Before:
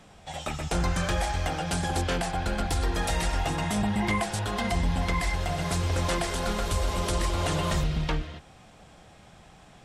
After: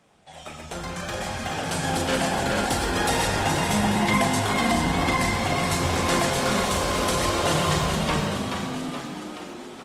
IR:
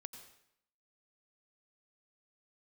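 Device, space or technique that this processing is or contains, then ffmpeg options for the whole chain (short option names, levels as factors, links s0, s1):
far-field microphone of a smart speaker: -filter_complex "[0:a]lowshelf=f=140:g=-3,asplit=2[s0][s1];[s1]adelay=38,volume=0.447[s2];[s0][s2]amix=inputs=2:normalize=0,asplit=9[s3][s4][s5][s6][s7][s8][s9][s10][s11];[s4]adelay=426,afreqshift=50,volume=0.473[s12];[s5]adelay=852,afreqshift=100,volume=0.285[s13];[s6]adelay=1278,afreqshift=150,volume=0.17[s14];[s7]adelay=1704,afreqshift=200,volume=0.102[s15];[s8]adelay=2130,afreqshift=250,volume=0.0617[s16];[s9]adelay=2556,afreqshift=300,volume=0.0367[s17];[s10]adelay=2982,afreqshift=350,volume=0.0221[s18];[s11]adelay=3408,afreqshift=400,volume=0.0132[s19];[s3][s12][s13][s14][s15][s16][s17][s18][s19]amix=inputs=9:normalize=0[s20];[1:a]atrim=start_sample=2205[s21];[s20][s21]afir=irnorm=-1:irlink=0,highpass=f=130:p=1,dynaudnorm=f=370:g=9:m=3.16" -ar 48000 -c:a libopus -b:a 24k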